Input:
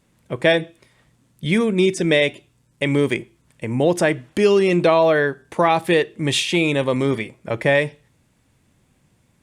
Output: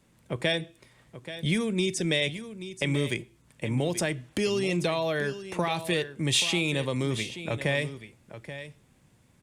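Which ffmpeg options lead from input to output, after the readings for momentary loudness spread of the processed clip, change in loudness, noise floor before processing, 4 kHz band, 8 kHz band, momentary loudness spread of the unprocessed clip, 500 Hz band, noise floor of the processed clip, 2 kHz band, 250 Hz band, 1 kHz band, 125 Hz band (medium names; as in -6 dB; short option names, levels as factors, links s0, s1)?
15 LU, -9.5 dB, -62 dBFS, -3.5 dB, -1.5 dB, 11 LU, -12.0 dB, -63 dBFS, -8.5 dB, -9.0 dB, -13.0 dB, -5.0 dB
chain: -filter_complex "[0:a]acrossover=split=140|3000[s0][s1][s2];[s1]acompressor=threshold=0.0282:ratio=2.5[s3];[s0][s3][s2]amix=inputs=3:normalize=0,asplit=2[s4][s5];[s5]aecho=0:1:831:0.237[s6];[s4][s6]amix=inputs=2:normalize=0,volume=0.841"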